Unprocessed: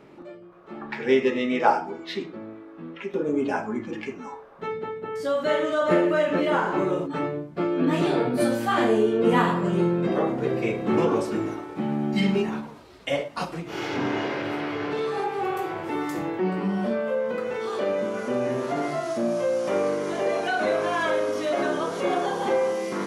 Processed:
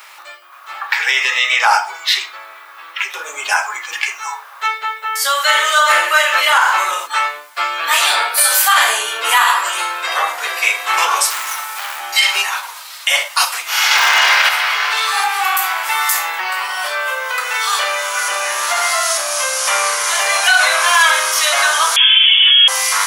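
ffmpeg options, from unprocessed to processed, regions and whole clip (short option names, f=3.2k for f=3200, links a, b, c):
-filter_complex "[0:a]asettb=1/sr,asplit=3[a][b][c];[a]atrim=end=11.304[d];[b]atrim=start=11.3:end=12,asetpts=PTS-STARTPTS,afade=t=in:d=0.004:c=qsin,afade=t=out:st=0.696:d=0.004:c=qsin,highpass=94,highshelf=f=7.8k:g=8,asoftclip=type=hard:threshold=-30.5dB[e];[c]atrim=start=11.996[f];[d][e]acrossfade=d=0.004:c1=hsin:c2=qsin[g];[g][f]acrossfade=d=0.004:c1=qsin:c2=hsin,asettb=1/sr,asplit=3[h][i][j];[h]atrim=end=13.914[k];[i]atrim=start=13.91:end=14.49,asetpts=PTS-STARTPTS,afade=t=in:d=0.004:c=qsin,afade=t=out:st=0.576:d=0.004:c=qsin,acontrast=50,volume=14dB,asoftclip=hard,volume=-14dB[l];[j]atrim=start=14.486[m];[k][l]acrossfade=d=0.004:c1=hsin:c2=qsin[n];[n][m]acrossfade=d=0.004:c1=qsin:c2=hsin,asettb=1/sr,asplit=3[o][p][q];[o]atrim=end=21.964[r];[p]atrim=start=21.96:end=22.68,asetpts=PTS-STARTPTS,afade=t=in:d=0.004:c=qsin,afade=t=out:st=0.716:d=0.004:c=qsin,highpass=500,lowpass=f=3.2k:t=q:w=0.5098,lowpass=f=3.2k:t=q:w=0.6013,lowpass=f=3.2k:t=q:w=0.9,lowpass=f=3.2k:t=q:w=2.563,afreqshift=-3800[s];[q]atrim=start=22.676[t];[r][s]acrossfade=d=0.004:c1=hsin:c2=qsin[u];[u][t]acrossfade=d=0.004:c1=qsin:c2=hsin,highpass=f=950:w=0.5412,highpass=f=950:w=1.3066,aemphasis=mode=production:type=riaa,alimiter=level_in=18.5dB:limit=-1dB:release=50:level=0:latency=1,volume=-1dB"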